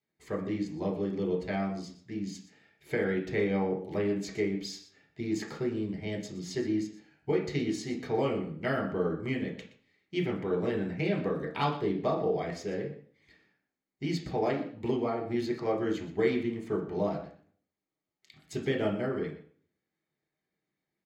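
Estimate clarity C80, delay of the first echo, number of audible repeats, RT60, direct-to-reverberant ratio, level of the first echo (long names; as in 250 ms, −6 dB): 11.5 dB, 121 ms, 1, 0.50 s, 0.0 dB, −15.0 dB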